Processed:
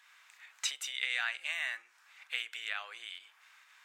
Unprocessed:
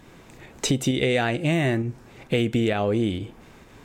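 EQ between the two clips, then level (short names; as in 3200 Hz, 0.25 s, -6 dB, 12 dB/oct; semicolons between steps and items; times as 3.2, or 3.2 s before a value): HPF 1300 Hz 24 dB/oct; high shelf 4500 Hz -6 dB; -3.5 dB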